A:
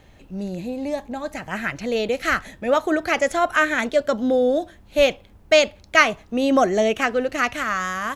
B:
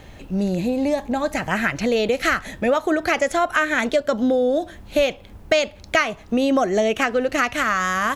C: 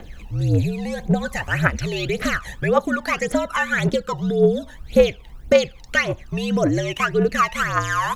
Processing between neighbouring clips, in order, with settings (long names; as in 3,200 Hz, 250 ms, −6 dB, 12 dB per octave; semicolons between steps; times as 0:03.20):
downward compressor 4 to 1, threshold −26 dBFS, peak gain reduction 14.5 dB; level +8.5 dB
phase shifter 1.8 Hz, delay 1.1 ms, feedback 72%; frequency shifter −70 Hz; level −3.5 dB